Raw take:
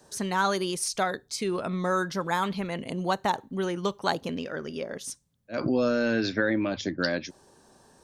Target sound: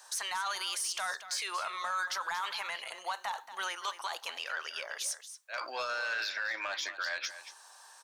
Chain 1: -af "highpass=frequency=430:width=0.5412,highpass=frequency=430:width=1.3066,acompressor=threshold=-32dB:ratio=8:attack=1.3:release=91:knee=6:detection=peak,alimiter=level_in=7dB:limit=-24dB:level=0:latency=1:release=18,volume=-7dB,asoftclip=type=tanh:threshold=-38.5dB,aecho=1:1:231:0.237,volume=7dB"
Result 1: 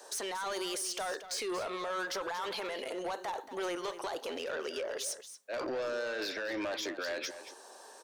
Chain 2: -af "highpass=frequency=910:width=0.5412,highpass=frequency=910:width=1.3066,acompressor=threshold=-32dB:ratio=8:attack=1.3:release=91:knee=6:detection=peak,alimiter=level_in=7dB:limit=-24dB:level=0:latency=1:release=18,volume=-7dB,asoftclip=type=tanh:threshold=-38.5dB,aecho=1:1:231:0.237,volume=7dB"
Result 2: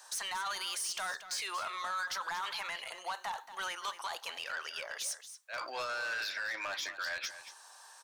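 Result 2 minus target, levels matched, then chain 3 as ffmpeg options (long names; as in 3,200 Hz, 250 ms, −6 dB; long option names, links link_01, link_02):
soft clipping: distortion +9 dB
-af "highpass=frequency=910:width=0.5412,highpass=frequency=910:width=1.3066,acompressor=threshold=-32dB:ratio=8:attack=1.3:release=91:knee=6:detection=peak,alimiter=level_in=7dB:limit=-24dB:level=0:latency=1:release=18,volume=-7dB,asoftclip=type=tanh:threshold=-32dB,aecho=1:1:231:0.237,volume=7dB"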